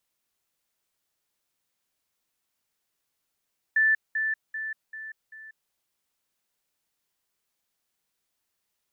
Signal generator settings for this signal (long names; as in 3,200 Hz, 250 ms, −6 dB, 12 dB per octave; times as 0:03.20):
level staircase 1,760 Hz −18 dBFS, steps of −6 dB, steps 5, 0.19 s 0.20 s